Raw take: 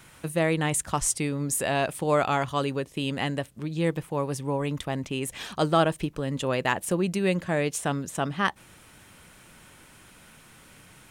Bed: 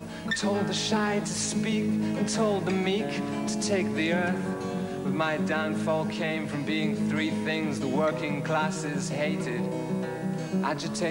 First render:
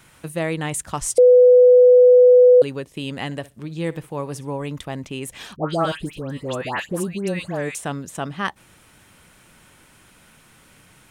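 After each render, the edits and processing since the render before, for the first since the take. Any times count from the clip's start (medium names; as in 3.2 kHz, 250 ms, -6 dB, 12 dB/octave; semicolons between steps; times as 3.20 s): 1.18–2.62 s: bleep 497 Hz -7 dBFS; 3.25–4.53 s: flutter echo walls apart 10.7 m, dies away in 0.2 s; 5.56–7.75 s: phase dispersion highs, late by 141 ms, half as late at 1.6 kHz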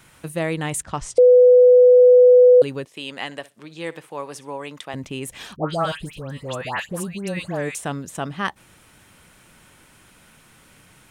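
0.82–2.00 s: distance through air 100 m; 2.85–4.94 s: frequency weighting A; 5.70–7.37 s: peaking EQ 320 Hz -8.5 dB 0.96 oct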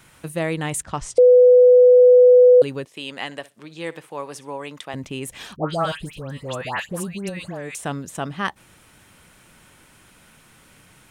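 7.29–7.84 s: compression 4:1, threshold -28 dBFS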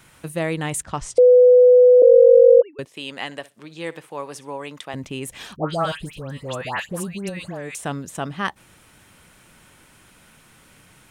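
2.02–2.79 s: formants replaced by sine waves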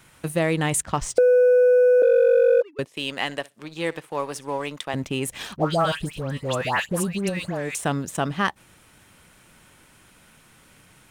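waveshaping leveller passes 1; compression 3:1, threshold -17 dBFS, peak gain reduction 7.5 dB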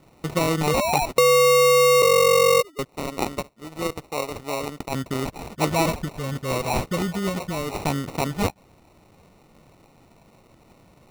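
0.67–1.06 s: painted sound rise 430–1000 Hz -23 dBFS; sample-and-hold 27×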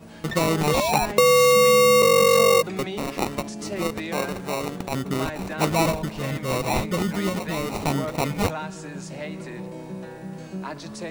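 add bed -5.5 dB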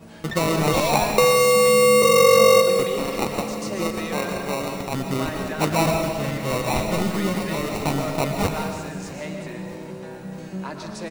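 feedback delay 644 ms, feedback 54%, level -19 dB; algorithmic reverb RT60 1.2 s, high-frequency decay 1×, pre-delay 85 ms, DRR 4 dB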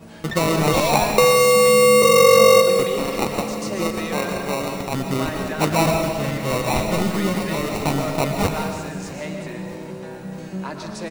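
trim +2 dB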